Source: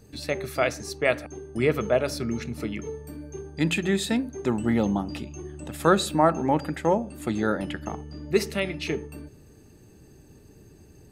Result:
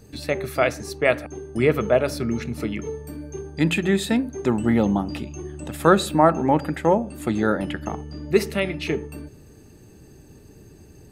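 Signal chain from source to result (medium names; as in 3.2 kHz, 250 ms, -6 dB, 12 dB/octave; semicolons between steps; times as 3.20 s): dynamic bell 5.8 kHz, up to -5 dB, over -47 dBFS, Q 0.83; trim +4 dB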